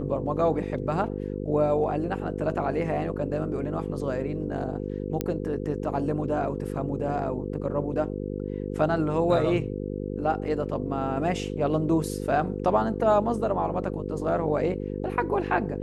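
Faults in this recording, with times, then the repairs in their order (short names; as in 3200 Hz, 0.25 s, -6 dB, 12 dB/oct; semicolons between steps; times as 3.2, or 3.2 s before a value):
buzz 50 Hz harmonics 10 -32 dBFS
5.21 pop -13 dBFS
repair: de-click; de-hum 50 Hz, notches 10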